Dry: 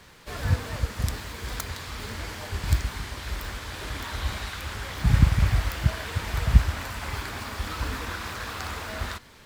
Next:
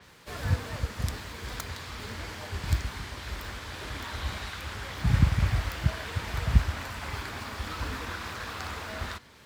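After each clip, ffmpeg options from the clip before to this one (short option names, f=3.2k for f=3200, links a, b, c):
-af "highpass=53,adynamicequalizer=threshold=0.002:dfrequency=7000:dqfactor=0.7:tfrequency=7000:tqfactor=0.7:attack=5:release=100:ratio=0.375:range=2:mode=cutabove:tftype=highshelf,volume=-2.5dB"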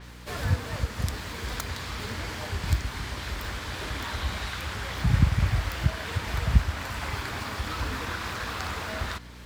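-filter_complex "[0:a]asplit=2[a][b];[b]acompressor=threshold=-36dB:ratio=6,volume=-2dB[c];[a][c]amix=inputs=2:normalize=0,aeval=exprs='val(0)+0.00562*(sin(2*PI*60*n/s)+sin(2*PI*2*60*n/s)/2+sin(2*PI*3*60*n/s)/3+sin(2*PI*4*60*n/s)/4+sin(2*PI*5*60*n/s)/5)':c=same"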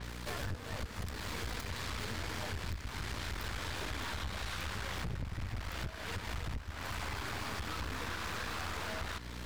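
-af "acompressor=threshold=-36dB:ratio=5,aeval=exprs='(tanh(100*val(0)+0.7)-tanh(0.7))/100':c=same,volume=5dB"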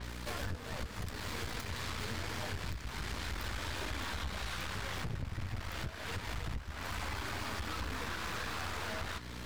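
-af "flanger=delay=3.2:depth=6:regen=-68:speed=0.27:shape=sinusoidal,volume=4.5dB"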